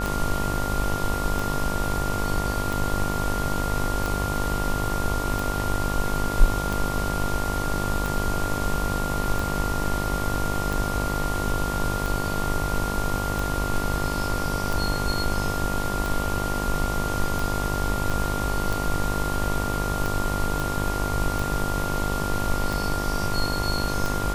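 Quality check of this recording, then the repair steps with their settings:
buzz 50 Hz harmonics 24 -29 dBFS
tick 45 rpm
whine 1.4 kHz -30 dBFS
18.10 s: dropout 4.5 ms
20.60 s: pop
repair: de-click; band-stop 1.4 kHz, Q 30; de-hum 50 Hz, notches 24; interpolate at 18.10 s, 4.5 ms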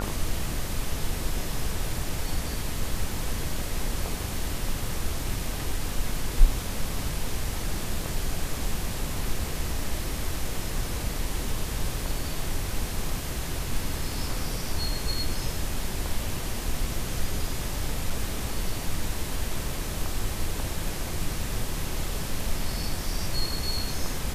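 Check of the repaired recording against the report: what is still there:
nothing left

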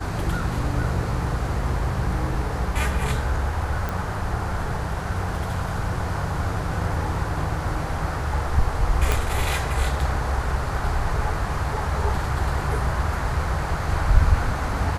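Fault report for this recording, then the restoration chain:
3.89 s: pop
9.12 s: pop -6 dBFS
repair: de-click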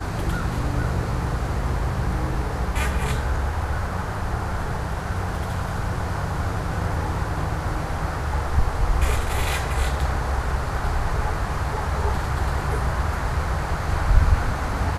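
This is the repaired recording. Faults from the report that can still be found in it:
9.12 s: pop

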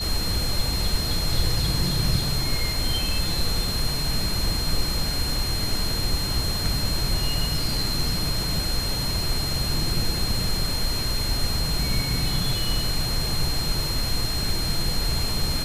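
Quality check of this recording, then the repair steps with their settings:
whine 4.2 kHz -28 dBFS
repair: band-stop 4.2 kHz, Q 30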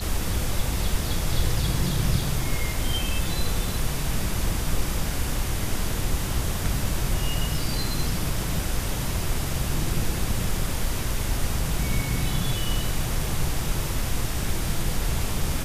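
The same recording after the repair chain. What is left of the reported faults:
nothing left

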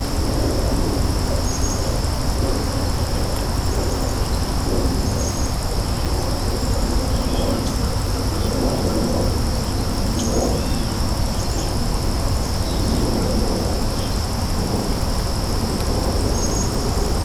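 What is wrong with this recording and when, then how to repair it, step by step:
crackle 27 per s -23 dBFS
6.05–6.06 s: dropout 6.6 ms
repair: de-click; interpolate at 6.05 s, 6.6 ms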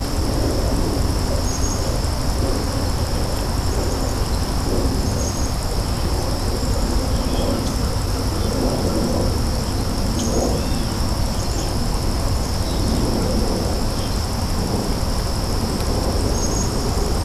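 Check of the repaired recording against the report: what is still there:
nothing left

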